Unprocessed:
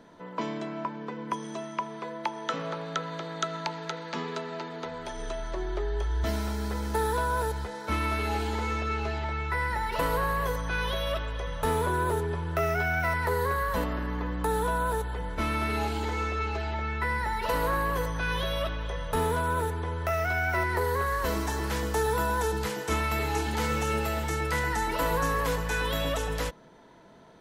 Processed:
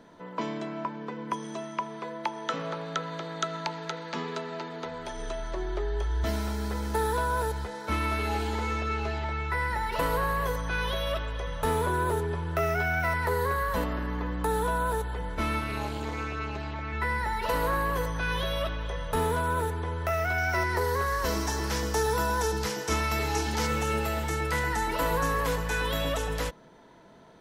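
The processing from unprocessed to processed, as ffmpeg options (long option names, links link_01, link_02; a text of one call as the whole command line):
ffmpeg -i in.wav -filter_complex "[0:a]asplit=3[link_01][link_02][link_03];[link_01]afade=type=out:start_time=15.59:duration=0.02[link_04];[link_02]tremolo=f=220:d=0.824,afade=type=in:start_time=15.59:duration=0.02,afade=type=out:start_time=16.92:duration=0.02[link_05];[link_03]afade=type=in:start_time=16.92:duration=0.02[link_06];[link_04][link_05][link_06]amix=inputs=3:normalize=0,asettb=1/sr,asplit=3[link_07][link_08][link_09];[link_07]atrim=end=20.384[link_10];[link_08]atrim=start=20.38:end=23.67,asetpts=PTS-STARTPTS,afade=type=in:duration=0.004:curve=qsin,afade=type=out:start_time=3.286:duration=0.004:curve=qsin,equalizer=frequency=5500:width=2.7:gain=9[link_11];[link_09]atrim=start=23.666[link_12];[link_10][link_11]acrossfade=duration=0.004:curve1=hsin:curve2=qsin[link_13];[link_13][link_12]acrossfade=duration=0.004:curve1=qsin:curve2=hsin" out.wav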